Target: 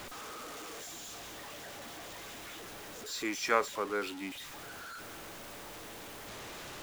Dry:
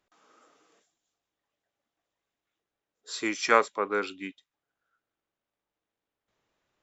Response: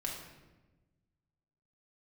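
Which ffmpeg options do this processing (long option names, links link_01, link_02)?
-af "aeval=exprs='val(0)+0.5*0.0266*sgn(val(0))':channel_layout=same,volume=-7.5dB"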